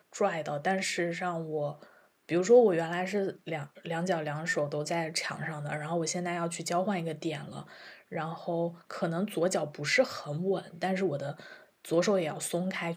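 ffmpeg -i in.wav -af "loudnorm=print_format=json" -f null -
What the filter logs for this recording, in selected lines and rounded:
"input_i" : "-31.0",
"input_tp" : "-10.6",
"input_lra" : "4.7",
"input_thresh" : "-41.4",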